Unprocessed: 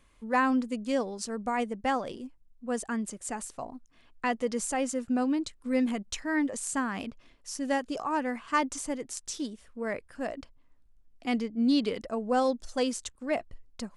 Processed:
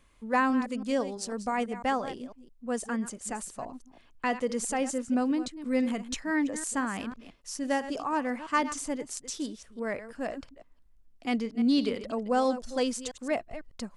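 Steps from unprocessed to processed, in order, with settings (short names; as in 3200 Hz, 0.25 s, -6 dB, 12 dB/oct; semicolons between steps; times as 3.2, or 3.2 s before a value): reverse delay 0.166 s, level -12.5 dB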